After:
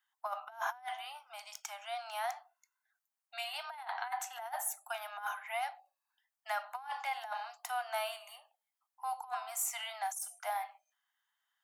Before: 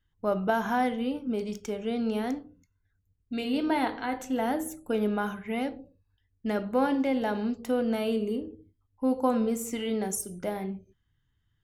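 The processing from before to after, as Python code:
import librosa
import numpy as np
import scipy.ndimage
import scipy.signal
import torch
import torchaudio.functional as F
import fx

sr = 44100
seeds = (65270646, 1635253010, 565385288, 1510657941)

y = scipy.signal.sosfilt(scipy.signal.butter(16, 690.0, 'highpass', fs=sr, output='sos'), x)
y = fx.peak_eq(y, sr, hz=3100.0, db=-6.5, octaves=2.0)
y = fx.over_compress(y, sr, threshold_db=-38.0, ratio=-0.5)
y = y * librosa.db_to_amplitude(1.5)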